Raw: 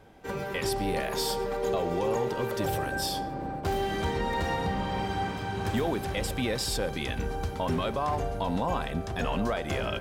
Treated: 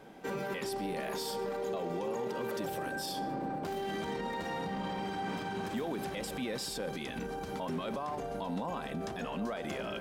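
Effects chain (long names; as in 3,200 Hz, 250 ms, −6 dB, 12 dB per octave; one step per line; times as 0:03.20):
brickwall limiter −31 dBFS, peak gain reduction 11.5 dB
low shelf with overshoot 130 Hz −11.5 dB, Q 1.5
level +2 dB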